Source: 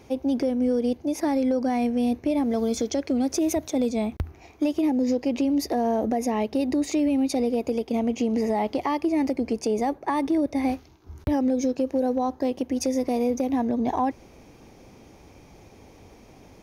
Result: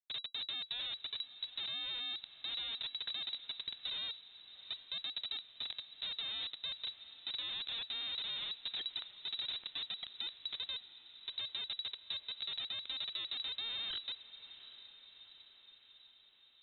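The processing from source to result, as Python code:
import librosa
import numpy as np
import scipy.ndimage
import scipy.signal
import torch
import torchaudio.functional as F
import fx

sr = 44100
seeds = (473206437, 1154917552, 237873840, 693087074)

p1 = fx.spec_expand(x, sr, power=3.4)
p2 = scipy.signal.sosfilt(scipy.signal.butter(4, 280.0, 'highpass', fs=sr, output='sos'), p1)
p3 = fx.dynamic_eq(p2, sr, hz=470.0, q=2.9, threshold_db=-40.0, ratio=4.0, max_db=-5)
p4 = fx.over_compress(p3, sr, threshold_db=-33.0, ratio=-0.5)
p5 = fx.env_lowpass_down(p4, sr, base_hz=1600.0, full_db=-27.5)
p6 = fx.rotary(p5, sr, hz=0.85)
p7 = fx.schmitt(p6, sr, flips_db=-35.5)
p8 = p7 + fx.echo_diffused(p7, sr, ms=758, feedback_pct=61, wet_db=-15.0, dry=0)
p9 = fx.freq_invert(p8, sr, carrier_hz=3900)
y = F.gain(torch.from_numpy(p9), -3.0).numpy()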